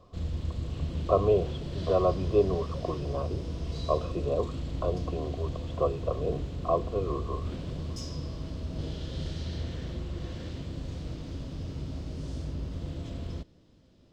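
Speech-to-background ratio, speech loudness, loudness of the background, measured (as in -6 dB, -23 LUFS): 5.5 dB, -31.0 LUFS, -36.5 LUFS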